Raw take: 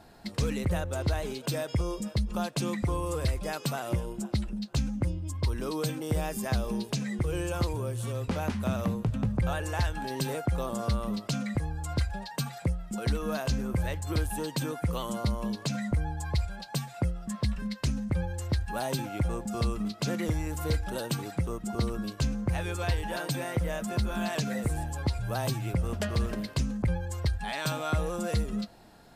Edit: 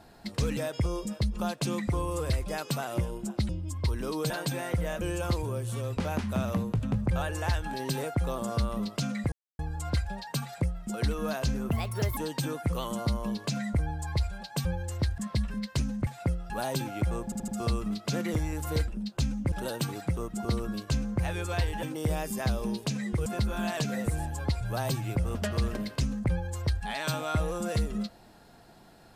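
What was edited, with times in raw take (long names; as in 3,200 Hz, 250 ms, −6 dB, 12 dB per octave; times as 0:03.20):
0:00.57–0:01.52: remove
0:04.44–0:05.08: move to 0:20.82
0:05.89–0:07.32: swap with 0:23.13–0:23.84
0:11.63: splice in silence 0.27 s
0:13.74–0:14.35: play speed 130%
0:16.83–0:17.26: swap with 0:18.15–0:18.68
0:19.42: stutter 0.08 s, 4 plays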